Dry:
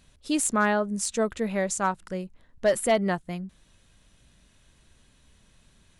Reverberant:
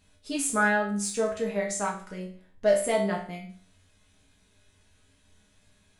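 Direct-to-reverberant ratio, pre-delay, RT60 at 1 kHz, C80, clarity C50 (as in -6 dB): -3.5 dB, 5 ms, 0.45 s, 11.0 dB, 7.0 dB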